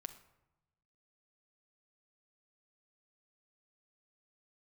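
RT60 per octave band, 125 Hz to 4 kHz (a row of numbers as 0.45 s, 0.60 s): 1.5 s, 1.2 s, 0.95 s, 0.95 s, 0.75 s, 0.50 s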